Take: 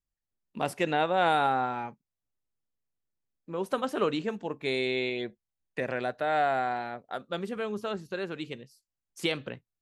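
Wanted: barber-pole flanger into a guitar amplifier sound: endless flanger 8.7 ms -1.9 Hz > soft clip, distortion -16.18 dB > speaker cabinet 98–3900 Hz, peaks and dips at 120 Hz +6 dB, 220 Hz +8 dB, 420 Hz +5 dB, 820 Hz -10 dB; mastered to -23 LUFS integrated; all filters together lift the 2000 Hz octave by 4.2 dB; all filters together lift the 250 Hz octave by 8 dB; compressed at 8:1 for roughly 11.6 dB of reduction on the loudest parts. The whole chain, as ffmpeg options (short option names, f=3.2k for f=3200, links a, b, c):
-filter_complex "[0:a]equalizer=f=250:t=o:g=5.5,equalizer=f=2k:t=o:g=6,acompressor=threshold=-31dB:ratio=8,asplit=2[a][b];[b]adelay=8.7,afreqshift=-1.9[c];[a][c]amix=inputs=2:normalize=1,asoftclip=threshold=-32dB,highpass=98,equalizer=f=120:t=q:w=4:g=6,equalizer=f=220:t=q:w=4:g=8,equalizer=f=420:t=q:w=4:g=5,equalizer=f=820:t=q:w=4:g=-10,lowpass=f=3.9k:w=0.5412,lowpass=f=3.9k:w=1.3066,volume=17dB"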